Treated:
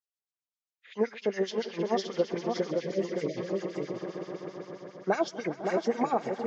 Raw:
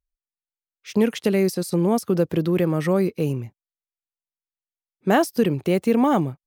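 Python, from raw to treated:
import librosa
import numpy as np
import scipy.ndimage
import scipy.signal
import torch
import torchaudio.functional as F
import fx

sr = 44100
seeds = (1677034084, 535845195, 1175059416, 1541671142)

p1 = fx.freq_compress(x, sr, knee_hz=1300.0, ratio=1.5)
p2 = fx.echo_swell(p1, sr, ms=126, loudest=5, wet_db=-16.5)
p3 = fx.filter_lfo_bandpass(p2, sr, shape='sine', hz=7.6, low_hz=530.0, high_hz=5600.0, q=1.2)
p4 = fx.ellip_bandstop(p3, sr, low_hz=600.0, high_hz=1900.0, order=3, stop_db=40, at=(2.7, 3.36), fade=0.02)
p5 = p4 + 10.0 ** (-4.5 / 20.0) * np.pad(p4, (int(566 * sr / 1000.0), 0))[:len(p4)]
p6 = fx.rider(p5, sr, range_db=3, speed_s=0.5)
p7 = p5 + F.gain(torch.from_numpy(p6), 0.0).numpy()
y = F.gain(torch.from_numpy(p7), -8.0).numpy()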